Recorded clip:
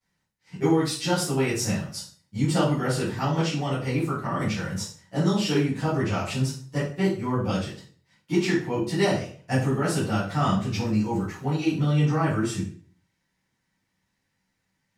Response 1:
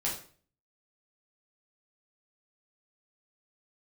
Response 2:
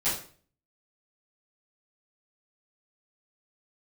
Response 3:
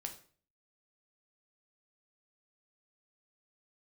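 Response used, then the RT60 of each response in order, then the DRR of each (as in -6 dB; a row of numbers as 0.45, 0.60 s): 2; 0.45, 0.45, 0.45 s; -5.0, -15.0, 4.0 dB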